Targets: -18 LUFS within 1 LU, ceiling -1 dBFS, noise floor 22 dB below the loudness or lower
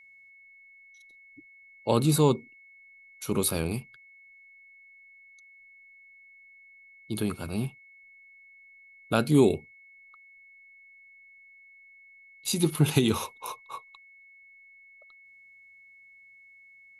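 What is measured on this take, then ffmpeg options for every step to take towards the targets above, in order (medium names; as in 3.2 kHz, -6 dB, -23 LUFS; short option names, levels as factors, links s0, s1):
steady tone 2.2 kHz; tone level -52 dBFS; loudness -27.0 LUFS; peak level -7.5 dBFS; loudness target -18.0 LUFS
-> -af "bandreject=f=2200:w=30"
-af "volume=2.82,alimiter=limit=0.891:level=0:latency=1"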